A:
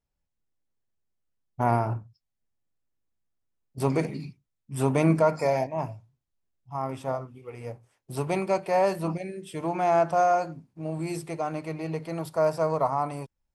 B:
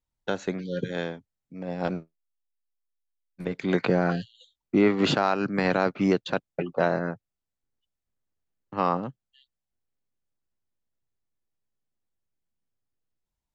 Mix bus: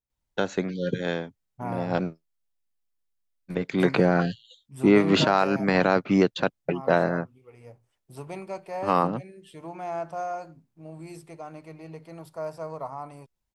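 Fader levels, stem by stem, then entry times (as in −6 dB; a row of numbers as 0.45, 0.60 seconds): −10.0, +2.5 decibels; 0.00, 0.10 seconds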